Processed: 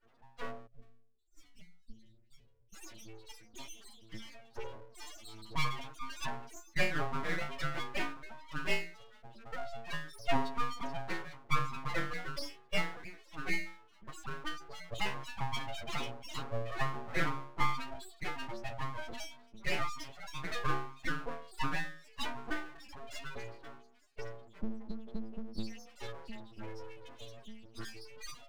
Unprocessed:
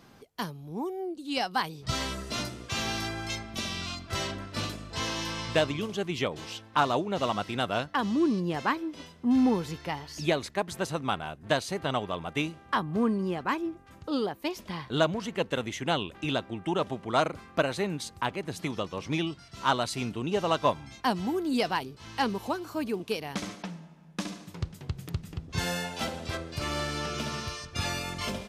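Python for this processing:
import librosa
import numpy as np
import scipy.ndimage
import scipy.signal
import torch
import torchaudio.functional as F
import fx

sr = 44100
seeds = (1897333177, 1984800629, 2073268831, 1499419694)

y = fx.hpss_only(x, sr, part='percussive')
y = fx.stiff_resonator(y, sr, f0_hz=110.0, decay_s=0.77, stiffness=0.008)
y = fx.echo_wet_highpass(y, sr, ms=438, feedback_pct=66, hz=2600.0, wet_db=-19.0)
y = fx.spec_topn(y, sr, count=8)
y = fx.air_absorb(y, sr, metres=160.0)
y = np.abs(y)
y = fx.tone_stack(y, sr, knobs='10-0-1', at=(0.66, 2.72), fade=0.02)
y = F.gain(torch.from_numpy(y), 15.0).numpy()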